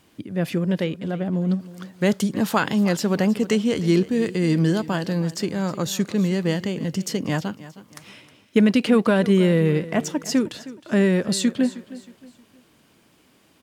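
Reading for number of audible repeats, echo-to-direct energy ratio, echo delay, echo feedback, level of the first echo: 3, -16.5 dB, 314 ms, 36%, -17.0 dB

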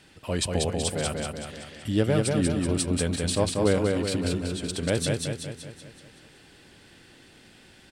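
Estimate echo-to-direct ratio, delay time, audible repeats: -1.5 dB, 189 ms, 6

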